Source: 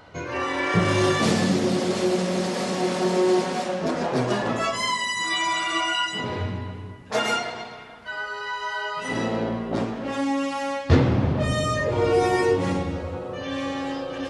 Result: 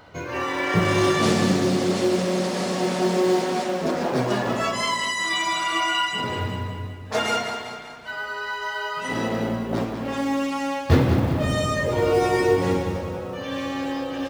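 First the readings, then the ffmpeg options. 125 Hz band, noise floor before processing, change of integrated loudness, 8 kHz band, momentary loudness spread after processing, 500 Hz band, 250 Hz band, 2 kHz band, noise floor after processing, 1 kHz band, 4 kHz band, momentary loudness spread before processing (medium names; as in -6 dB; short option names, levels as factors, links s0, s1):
+0.5 dB, -38 dBFS, +1.0 dB, +0.5 dB, 10 LU, +1.0 dB, +1.0 dB, +1.0 dB, -35 dBFS, +1.0 dB, +0.5 dB, 11 LU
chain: -filter_complex "[0:a]acrusher=bits=8:mode=log:mix=0:aa=0.000001,asplit=2[s0][s1];[s1]aecho=0:1:193|386|579|772|965|1158:0.355|0.174|0.0852|0.0417|0.0205|0.01[s2];[s0][s2]amix=inputs=2:normalize=0"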